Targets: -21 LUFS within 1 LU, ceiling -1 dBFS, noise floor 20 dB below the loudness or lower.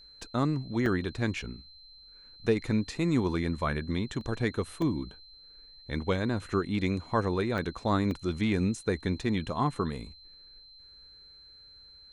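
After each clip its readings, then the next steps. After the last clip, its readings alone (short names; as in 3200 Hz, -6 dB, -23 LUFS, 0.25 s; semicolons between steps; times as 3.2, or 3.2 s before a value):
dropouts 6; longest dropout 1.7 ms; steady tone 4100 Hz; tone level -51 dBFS; loudness -30.5 LUFS; peak -13.5 dBFS; loudness target -21.0 LUFS
-> interpolate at 0.22/0.86/4.21/4.82/7.58/8.11, 1.7 ms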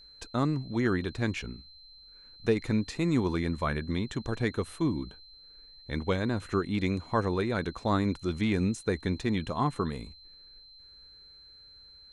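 dropouts 0; steady tone 4100 Hz; tone level -51 dBFS
-> notch 4100 Hz, Q 30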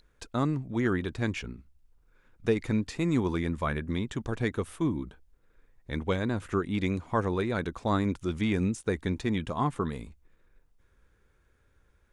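steady tone none; loudness -30.5 LUFS; peak -14.0 dBFS; loudness target -21.0 LUFS
-> gain +9.5 dB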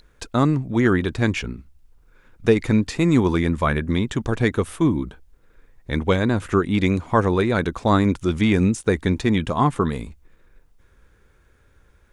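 loudness -21.0 LUFS; peak -4.5 dBFS; noise floor -57 dBFS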